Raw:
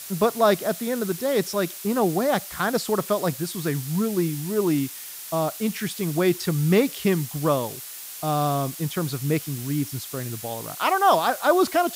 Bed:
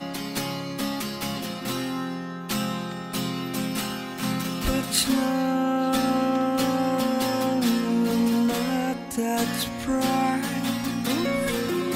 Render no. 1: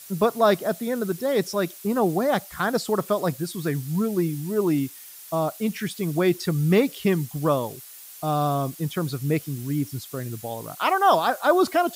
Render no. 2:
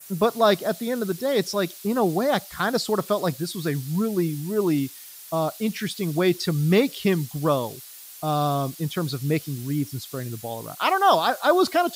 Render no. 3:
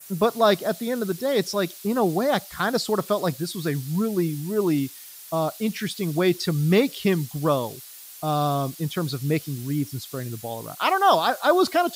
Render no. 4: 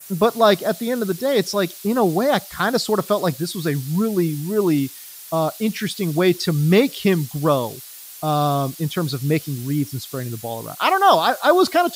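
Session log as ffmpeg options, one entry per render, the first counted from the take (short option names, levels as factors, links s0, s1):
-af "afftdn=nr=8:nf=-38"
-af "adynamicequalizer=threshold=0.00447:dfrequency=4200:dqfactor=1.4:tfrequency=4200:tqfactor=1.4:attack=5:release=100:ratio=0.375:range=3:mode=boostabove:tftype=bell"
-af anull
-af "volume=1.58"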